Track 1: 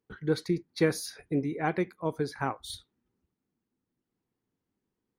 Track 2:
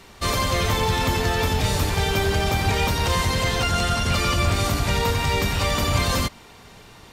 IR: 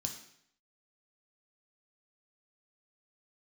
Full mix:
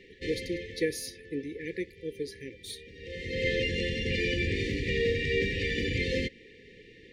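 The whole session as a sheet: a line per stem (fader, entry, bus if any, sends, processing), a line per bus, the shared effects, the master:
−1.5 dB, 0.00 s, no send, no processing
+1.5 dB, 0.00 s, no send, low-pass filter 1,900 Hz 12 dB per octave; automatic ducking −23 dB, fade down 1.15 s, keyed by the first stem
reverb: not used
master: brick-wall band-stop 530–1,700 Hz; bass and treble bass −13 dB, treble +1 dB

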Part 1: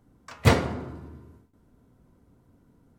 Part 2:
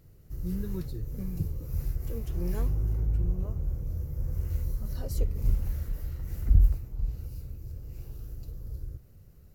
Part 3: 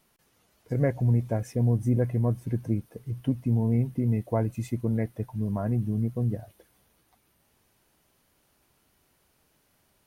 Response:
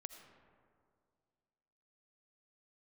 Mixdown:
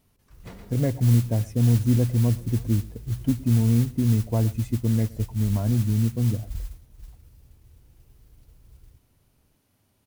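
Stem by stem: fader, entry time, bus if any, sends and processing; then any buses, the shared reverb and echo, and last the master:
−19.5 dB, 0.00 s, no send, echo send −13 dB, automatic ducking −11 dB, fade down 0.90 s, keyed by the third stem
−15.5 dB, 0.00 s, send −6.5 dB, no echo send, no processing
−3.0 dB, 0.00 s, no send, echo send −21 dB, graphic EQ with 15 bands 100 Hz +11 dB, 250 Hz +7 dB, 1,600 Hz −3 dB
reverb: on, RT60 2.2 s, pre-delay 40 ms
echo: single-tap delay 117 ms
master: noise that follows the level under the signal 21 dB

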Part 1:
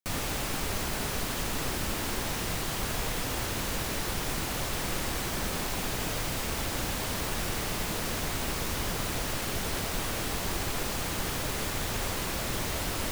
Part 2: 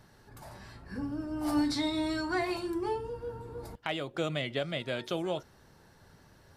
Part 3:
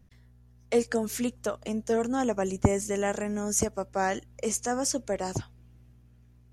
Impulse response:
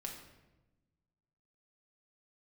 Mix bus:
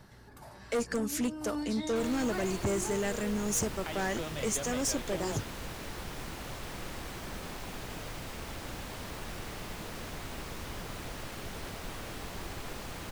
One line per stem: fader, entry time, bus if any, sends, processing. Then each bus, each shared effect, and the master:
−8.0 dB, 1.90 s, no send, high-shelf EQ 5,000 Hz −7 dB
−7.0 dB, 0.00 s, no send, multiband upward and downward compressor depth 40%
−0.5 dB, 0.00 s, no send, parametric band 720 Hz −7 dB 0.74 octaves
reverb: not used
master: gain into a clipping stage and back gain 26 dB

